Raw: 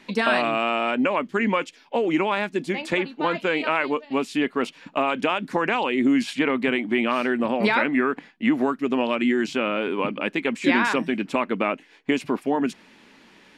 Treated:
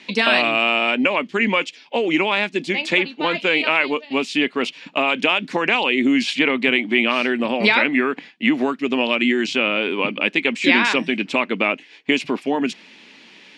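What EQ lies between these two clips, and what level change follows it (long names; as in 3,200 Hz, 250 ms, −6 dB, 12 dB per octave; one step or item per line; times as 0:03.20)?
band-pass filter 150–6,100 Hz
high shelf with overshoot 1,900 Hz +6.5 dB, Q 1.5
+2.5 dB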